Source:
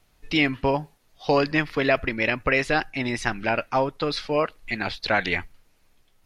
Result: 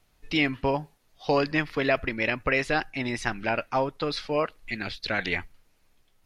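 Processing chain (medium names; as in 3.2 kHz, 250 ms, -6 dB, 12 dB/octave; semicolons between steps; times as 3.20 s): 4.70–5.19 s: peaking EQ 870 Hz -9.5 dB 0.99 oct; trim -3 dB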